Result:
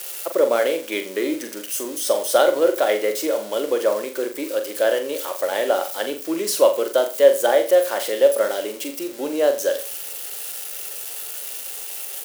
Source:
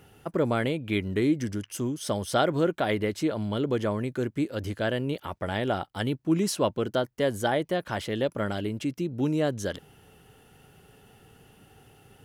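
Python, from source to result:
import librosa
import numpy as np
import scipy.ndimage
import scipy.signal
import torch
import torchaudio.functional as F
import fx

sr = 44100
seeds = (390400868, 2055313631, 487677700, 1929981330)

p1 = x + 0.5 * 10.0 ** (-27.0 / 20.0) * np.diff(np.sign(x), prepend=np.sign(x[:1]))
p2 = scipy.signal.sosfilt(scipy.signal.butter(4, 350.0, 'highpass', fs=sr, output='sos'), p1)
p3 = fx.peak_eq(p2, sr, hz=550.0, db=11.5, octaves=0.25)
p4 = p3 + fx.room_flutter(p3, sr, wall_m=7.3, rt60_s=0.34, dry=0)
y = p4 * librosa.db_to_amplitude(4.0)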